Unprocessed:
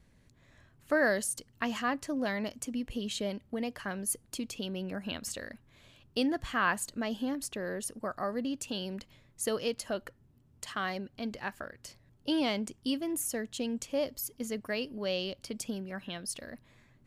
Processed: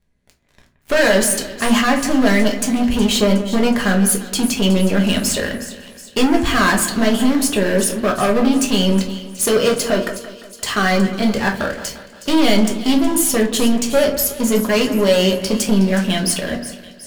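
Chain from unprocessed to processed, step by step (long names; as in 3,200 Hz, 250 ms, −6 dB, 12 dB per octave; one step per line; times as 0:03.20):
leveller curve on the samples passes 5
echo with a time of its own for lows and highs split 2,800 Hz, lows 174 ms, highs 367 ms, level −13 dB
rectangular room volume 170 cubic metres, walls furnished, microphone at 1.3 metres
level +1.5 dB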